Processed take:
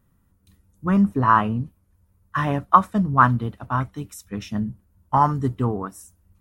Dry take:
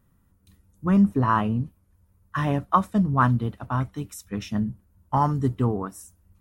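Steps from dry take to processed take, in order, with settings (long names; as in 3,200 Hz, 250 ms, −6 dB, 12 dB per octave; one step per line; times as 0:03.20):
dynamic equaliser 1,300 Hz, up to +7 dB, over −33 dBFS, Q 0.81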